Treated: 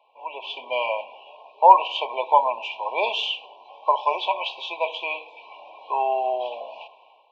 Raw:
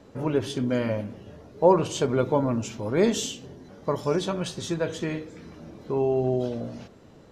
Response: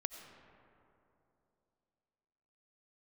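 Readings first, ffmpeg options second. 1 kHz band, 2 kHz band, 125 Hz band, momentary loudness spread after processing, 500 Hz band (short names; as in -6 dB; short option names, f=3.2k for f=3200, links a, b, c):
+13.0 dB, +7.5 dB, under -40 dB, 17 LU, -2.5 dB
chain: -af "asuperpass=centerf=1500:order=8:qfactor=0.66,dynaudnorm=f=130:g=7:m=13.5dB,afftfilt=real='re*(1-between(b*sr/4096,1100,2300))':imag='im*(1-between(b*sr/4096,1100,2300))':win_size=4096:overlap=0.75,volume=1.5dB"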